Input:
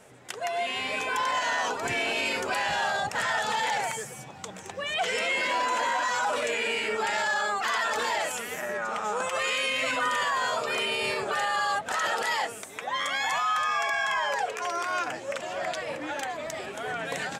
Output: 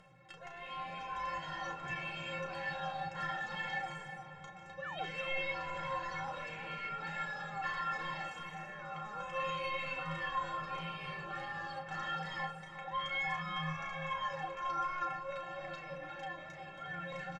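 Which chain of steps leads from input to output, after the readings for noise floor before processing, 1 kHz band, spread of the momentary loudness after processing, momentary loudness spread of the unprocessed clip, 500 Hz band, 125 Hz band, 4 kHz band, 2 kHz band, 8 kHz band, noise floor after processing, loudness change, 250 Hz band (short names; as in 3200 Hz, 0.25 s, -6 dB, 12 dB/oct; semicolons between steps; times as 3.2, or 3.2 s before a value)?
-42 dBFS, -11.0 dB, 9 LU, 8 LU, -13.5 dB, +1.0 dB, -15.0 dB, -12.0 dB, -25.0 dB, -51 dBFS, -11.5 dB, -7.5 dB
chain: low shelf 180 Hz +8.5 dB; doubler 34 ms -7 dB; in parallel at -11 dB: sample-and-hold 41×; on the sum: metallic resonator 160 Hz, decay 0.38 s, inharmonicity 0.03; painted sound fall, 4.84–5.09, 300–1600 Hz -46 dBFS; LPF 3200 Hz 12 dB/oct; on a send: darkening echo 0.358 s, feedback 59%, low-pass 2300 Hz, level -8.5 dB; on the sum: upward compressor, threshold -56 dBFS; bell 350 Hz -9.5 dB 0.69 oct; gain +1 dB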